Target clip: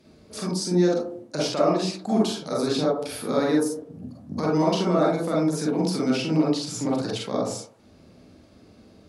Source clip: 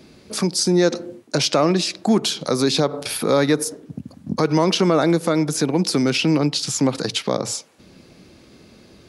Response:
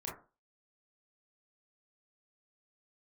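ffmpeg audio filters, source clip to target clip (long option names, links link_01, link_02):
-filter_complex "[1:a]atrim=start_sample=2205,asetrate=29547,aresample=44100[link_01];[0:a][link_01]afir=irnorm=-1:irlink=0,volume=-8dB"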